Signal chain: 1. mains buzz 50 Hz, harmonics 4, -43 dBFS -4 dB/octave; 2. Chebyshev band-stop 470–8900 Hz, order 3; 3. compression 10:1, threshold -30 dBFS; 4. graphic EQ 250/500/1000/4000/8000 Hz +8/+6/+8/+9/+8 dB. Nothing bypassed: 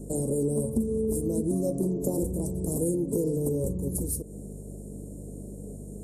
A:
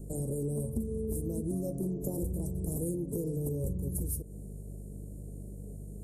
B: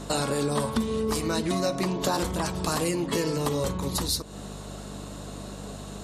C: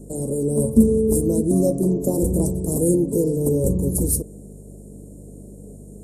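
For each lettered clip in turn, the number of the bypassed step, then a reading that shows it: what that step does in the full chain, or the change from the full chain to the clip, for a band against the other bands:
4, 125 Hz band +5.0 dB; 2, 1 kHz band +19.5 dB; 3, mean gain reduction 5.5 dB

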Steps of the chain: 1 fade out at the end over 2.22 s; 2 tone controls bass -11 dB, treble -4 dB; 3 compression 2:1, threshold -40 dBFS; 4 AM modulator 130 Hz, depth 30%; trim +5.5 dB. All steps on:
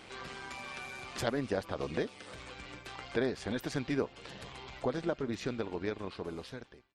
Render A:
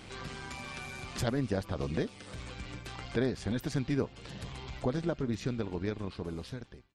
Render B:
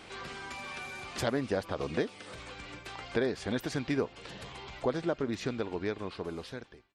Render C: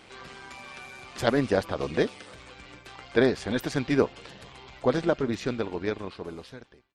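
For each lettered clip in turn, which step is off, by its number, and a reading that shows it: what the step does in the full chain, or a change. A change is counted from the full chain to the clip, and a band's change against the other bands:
2, 125 Hz band +7.5 dB; 4, crest factor change -1.5 dB; 3, mean gain reduction 4.0 dB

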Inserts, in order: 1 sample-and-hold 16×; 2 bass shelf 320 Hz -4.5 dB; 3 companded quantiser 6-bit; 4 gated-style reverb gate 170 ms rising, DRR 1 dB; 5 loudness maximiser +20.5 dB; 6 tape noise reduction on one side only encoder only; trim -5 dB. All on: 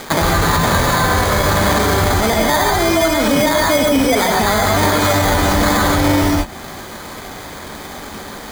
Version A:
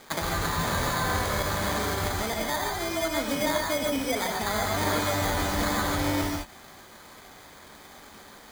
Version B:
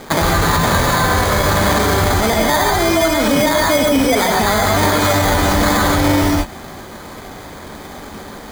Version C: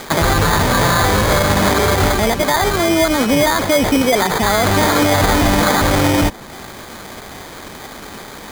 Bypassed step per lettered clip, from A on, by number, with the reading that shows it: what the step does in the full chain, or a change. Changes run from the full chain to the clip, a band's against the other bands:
5, crest factor change +6.0 dB; 6, momentary loudness spread change +3 LU; 4, momentary loudness spread change +2 LU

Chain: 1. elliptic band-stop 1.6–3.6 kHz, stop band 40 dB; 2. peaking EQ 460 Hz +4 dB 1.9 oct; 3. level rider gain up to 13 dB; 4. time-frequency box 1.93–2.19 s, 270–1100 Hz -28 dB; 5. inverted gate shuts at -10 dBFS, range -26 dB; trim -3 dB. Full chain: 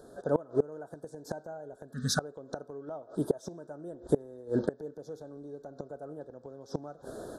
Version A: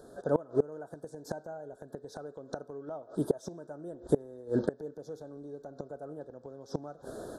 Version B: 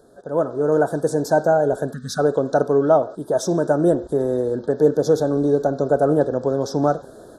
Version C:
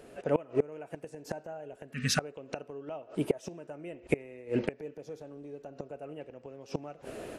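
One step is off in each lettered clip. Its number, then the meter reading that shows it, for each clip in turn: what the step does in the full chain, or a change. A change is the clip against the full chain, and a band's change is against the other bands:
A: 4, 4 kHz band -12.5 dB; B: 5, momentary loudness spread change -7 LU; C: 1, 2 kHz band +4.5 dB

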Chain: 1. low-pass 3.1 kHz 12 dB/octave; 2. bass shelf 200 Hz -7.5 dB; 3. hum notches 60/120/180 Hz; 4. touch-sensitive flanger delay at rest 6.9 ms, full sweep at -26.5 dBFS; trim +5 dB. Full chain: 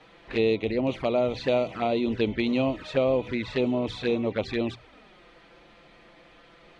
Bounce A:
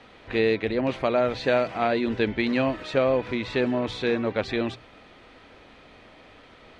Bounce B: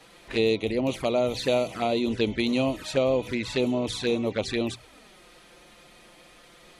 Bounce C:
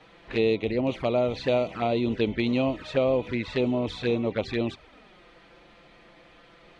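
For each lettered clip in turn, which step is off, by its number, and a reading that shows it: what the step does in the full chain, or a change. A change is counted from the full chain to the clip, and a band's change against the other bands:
4, 2 kHz band +4.0 dB; 1, 4 kHz band +4.5 dB; 3, 125 Hz band +2.0 dB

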